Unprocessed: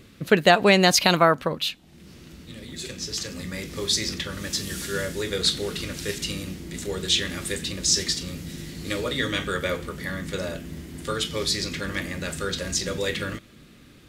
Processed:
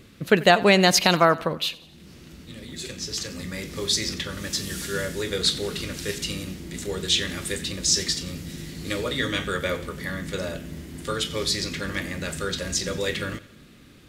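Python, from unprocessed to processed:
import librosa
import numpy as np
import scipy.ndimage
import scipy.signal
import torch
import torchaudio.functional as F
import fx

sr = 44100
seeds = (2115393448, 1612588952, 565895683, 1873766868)

y = fx.echo_feedback(x, sr, ms=89, feedback_pct=52, wet_db=-20.0)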